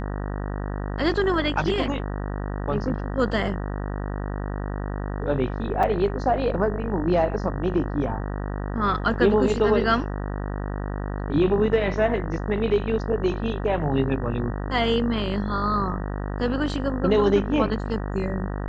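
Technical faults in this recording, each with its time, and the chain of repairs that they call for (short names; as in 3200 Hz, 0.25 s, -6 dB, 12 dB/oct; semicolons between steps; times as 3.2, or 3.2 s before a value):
buzz 50 Hz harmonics 38 -29 dBFS
5.83 gap 4.8 ms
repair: de-hum 50 Hz, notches 38; interpolate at 5.83, 4.8 ms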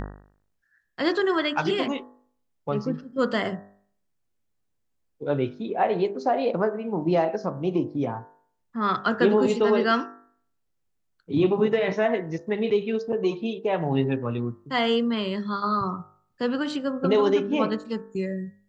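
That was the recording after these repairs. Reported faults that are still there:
none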